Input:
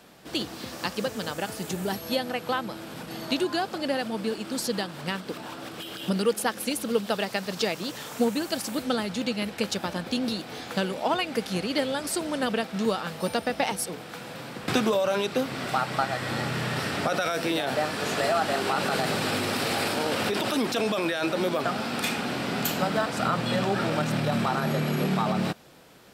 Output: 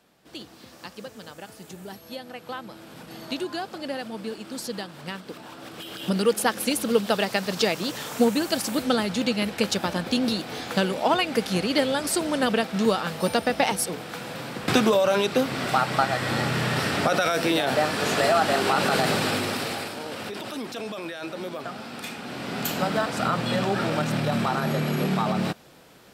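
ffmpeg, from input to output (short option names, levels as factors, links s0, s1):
-af "volume=4.22,afade=t=in:st=2.18:d=0.94:silence=0.501187,afade=t=in:st=5.52:d=0.98:silence=0.398107,afade=t=out:st=19.09:d=0.82:silence=0.266073,afade=t=in:st=22.2:d=0.66:silence=0.375837"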